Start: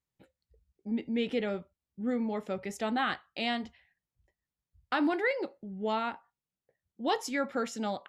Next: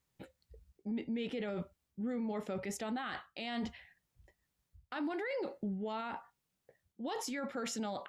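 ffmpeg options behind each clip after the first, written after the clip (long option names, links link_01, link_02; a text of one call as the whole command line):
ffmpeg -i in.wav -af "areverse,acompressor=threshold=-39dB:ratio=6,areverse,alimiter=level_in=15.5dB:limit=-24dB:level=0:latency=1:release=27,volume=-15.5dB,volume=8.5dB" out.wav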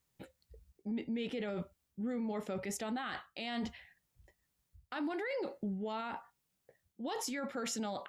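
ffmpeg -i in.wav -af "highshelf=frequency=6300:gain=4.5" out.wav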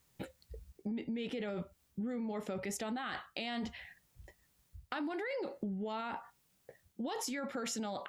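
ffmpeg -i in.wav -af "acompressor=threshold=-46dB:ratio=4,volume=8.5dB" out.wav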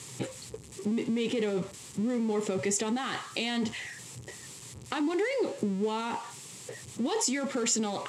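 ffmpeg -i in.wav -af "aeval=exprs='val(0)+0.5*0.00531*sgn(val(0))':channel_layout=same,highpass=frequency=110:width=0.5412,highpass=frequency=110:width=1.3066,equalizer=frequency=120:width_type=q:width=4:gain=7,equalizer=frequency=180:width_type=q:width=4:gain=-3,equalizer=frequency=410:width_type=q:width=4:gain=5,equalizer=frequency=650:width_type=q:width=4:gain=-9,equalizer=frequency=1500:width_type=q:width=4:gain=-8,equalizer=frequency=7600:width_type=q:width=4:gain=8,lowpass=frequency=9800:width=0.5412,lowpass=frequency=9800:width=1.3066,volume=7.5dB" out.wav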